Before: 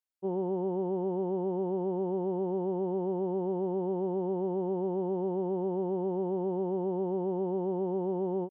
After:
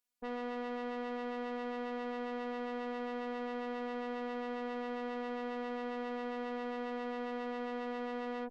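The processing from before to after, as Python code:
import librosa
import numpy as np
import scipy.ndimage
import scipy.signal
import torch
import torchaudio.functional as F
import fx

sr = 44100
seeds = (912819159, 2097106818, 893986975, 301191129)

y = fx.tube_stage(x, sr, drive_db=41.0, bias=0.45)
y = fx.robotise(y, sr, hz=244.0)
y = y * librosa.db_to_amplitude(8.0)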